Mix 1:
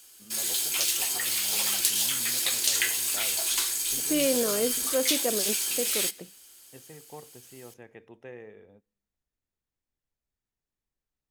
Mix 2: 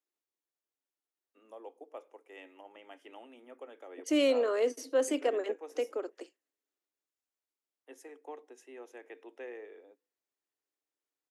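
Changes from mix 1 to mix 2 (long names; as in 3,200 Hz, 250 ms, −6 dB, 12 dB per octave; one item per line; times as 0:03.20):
first voice: entry +1.15 s
background: muted
master: add Butterworth high-pass 270 Hz 72 dB per octave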